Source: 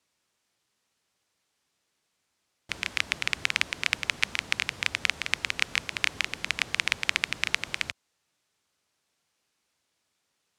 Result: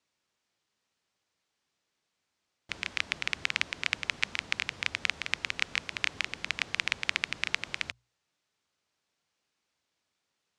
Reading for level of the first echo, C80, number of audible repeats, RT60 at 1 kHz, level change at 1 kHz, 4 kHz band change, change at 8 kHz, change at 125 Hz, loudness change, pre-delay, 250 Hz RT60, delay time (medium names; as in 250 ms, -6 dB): no echo, no reverb, no echo, no reverb, -3.5 dB, -3.5 dB, -6.0 dB, -4.0 dB, -3.5 dB, no reverb, no reverb, no echo